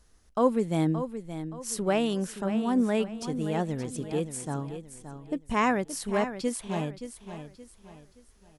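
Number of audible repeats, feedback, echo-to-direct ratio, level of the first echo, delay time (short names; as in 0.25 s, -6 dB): 3, 35%, -10.0 dB, -10.5 dB, 0.573 s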